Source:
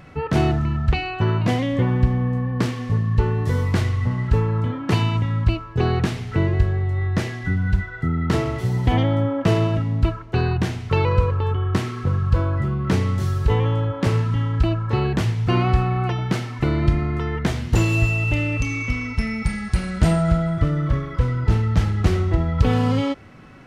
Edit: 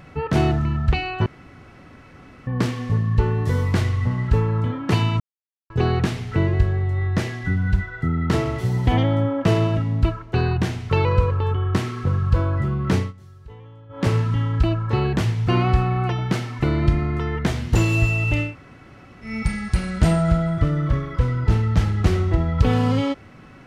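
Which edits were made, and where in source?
1.26–2.47 s: room tone
5.20–5.70 s: mute
12.97–14.05 s: dip -23 dB, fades 0.16 s
18.48–19.29 s: room tone, crossfade 0.16 s

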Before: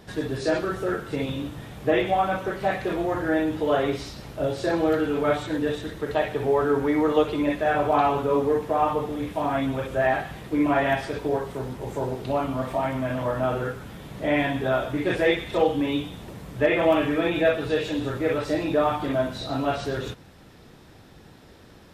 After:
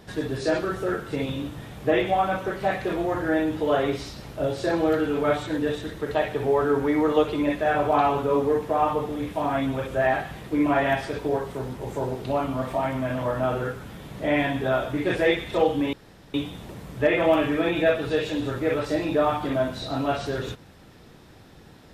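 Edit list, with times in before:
15.93 s: insert room tone 0.41 s

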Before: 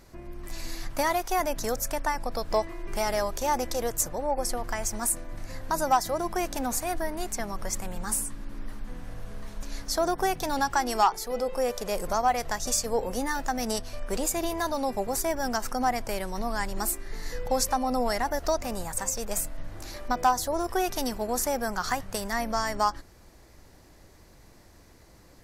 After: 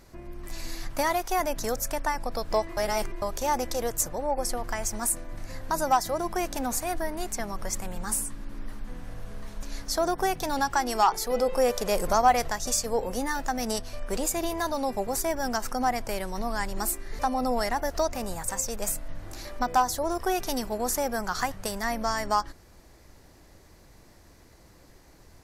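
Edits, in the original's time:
2.77–3.22 s: reverse
11.08–12.48 s: gain +4 dB
17.19–17.68 s: delete

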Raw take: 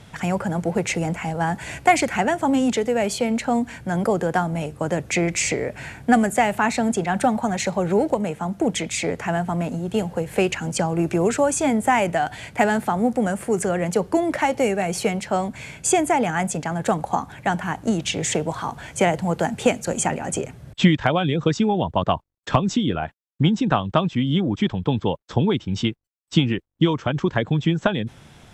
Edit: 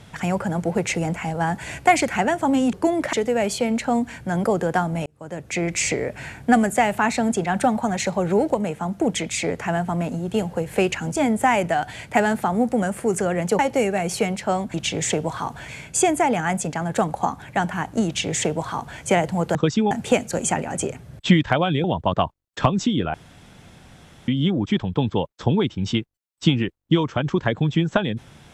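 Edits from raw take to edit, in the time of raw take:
4.66–5.43 s: fade in
10.76–11.60 s: delete
14.03–14.43 s: move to 2.73 s
17.96–18.90 s: copy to 15.58 s
21.38–21.74 s: move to 19.45 s
23.04–24.18 s: room tone

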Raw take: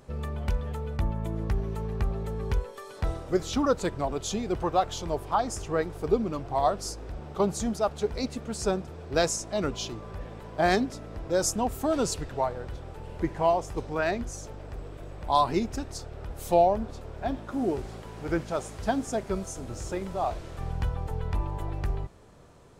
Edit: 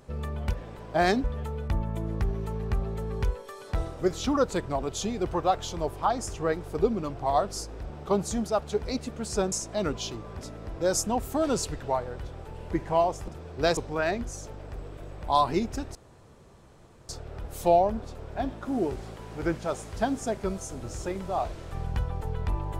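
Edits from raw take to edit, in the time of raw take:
8.81–9.30 s: move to 13.77 s
10.17–10.88 s: move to 0.53 s
15.95 s: insert room tone 1.14 s

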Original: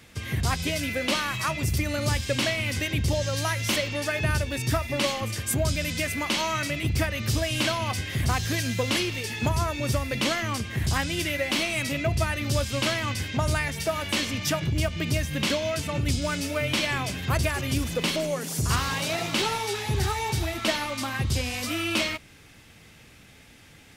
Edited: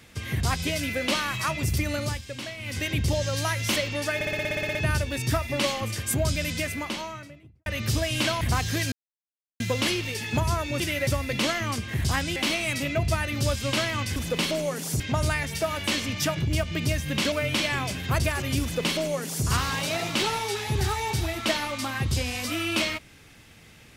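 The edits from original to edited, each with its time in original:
1.94–2.87 s: dip -10.5 dB, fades 0.28 s
4.15 s: stutter 0.06 s, 11 plays
5.85–7.06 s: studio fade out
7.81–8.18 s: delete
8.69 s: insert silence 0.68 s
11.18–11.45 s: move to 9.89 s
15.57–16.51 s: delete
17.81–18.65 s: copy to 13.25 s

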